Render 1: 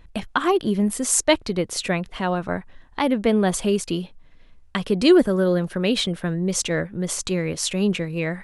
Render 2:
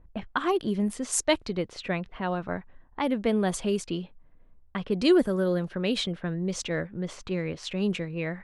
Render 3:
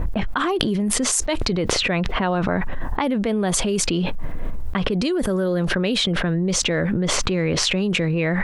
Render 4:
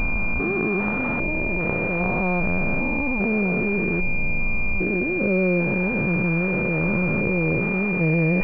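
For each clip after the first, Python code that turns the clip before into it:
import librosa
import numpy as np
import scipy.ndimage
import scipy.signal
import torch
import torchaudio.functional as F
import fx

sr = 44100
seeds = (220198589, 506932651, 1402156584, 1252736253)

y1 = fx.env_lowpass(x, sr, base_hz=900.0, full_db=-15.5)
y1 = y1 * librosa.db_to_amplitude(-6.0)
y2 = fx.env_flatten(y1, sr, amount_pct=100)
y2 = y2 * librosa.db_to_amplitude(-4.5)
y3 = fx.spec_steps(y2, sr, hold_ms=400)
y3 = fx.pwm(y3, sr, carrier_hz=2400.0)
y3 = y3 * librosa.db_to_amplitude(2.5)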